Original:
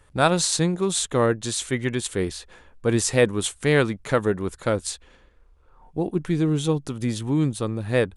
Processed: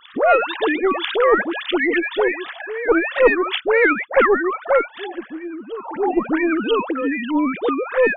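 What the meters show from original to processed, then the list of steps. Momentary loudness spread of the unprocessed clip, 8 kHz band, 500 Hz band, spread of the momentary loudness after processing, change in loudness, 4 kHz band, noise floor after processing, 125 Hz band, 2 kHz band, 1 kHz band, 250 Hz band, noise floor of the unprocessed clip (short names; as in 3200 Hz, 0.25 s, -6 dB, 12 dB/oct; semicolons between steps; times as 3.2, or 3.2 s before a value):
8 LU, under -40 dB, +6.5 dB, 13 LU, +5.0 dB, +1.0 dB, -41 dBFS, under -20 dB, +10.0 dB, +9.0 dB, +3.0 dB, -56 dBFS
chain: sine-wave speech; three-band isolator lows -16 dB, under 270 Hz, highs -18 dB, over 2500 Hz; dispersion highs, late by 0.106 s, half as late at 820 Hz; added harmonics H 2 -26 dB, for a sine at -5.5 dBFS; dynamic EQ 600 Hz, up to +7 dB, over -37 dBFS, Q 3.4; on a send: reverse echo 0.99 s -21.5 dB; on the sum: spectral compressor 2:1; gain +2 dB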